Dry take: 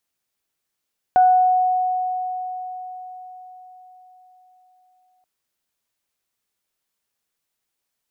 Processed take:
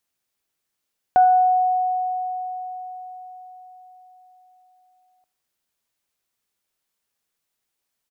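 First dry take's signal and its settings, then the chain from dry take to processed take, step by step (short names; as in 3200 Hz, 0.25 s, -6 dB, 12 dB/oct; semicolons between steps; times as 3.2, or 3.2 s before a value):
additive tone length 4.08 s, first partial 737 Hz, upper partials -19.5 dB, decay 4.79 s, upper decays 0.69 s, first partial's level -9.5 dB
feedback echo 82 ms, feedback 42%, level -20.5 dB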